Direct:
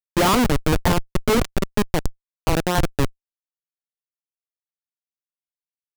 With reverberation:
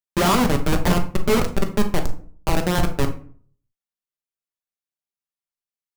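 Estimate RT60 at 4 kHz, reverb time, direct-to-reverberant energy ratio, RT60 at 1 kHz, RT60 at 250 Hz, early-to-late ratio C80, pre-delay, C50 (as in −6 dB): 0.30 s, 0.50 s, 4.0 dB, 0.45 s, 0.60 s, 15.5 dB, 5 ms, 11.0 dB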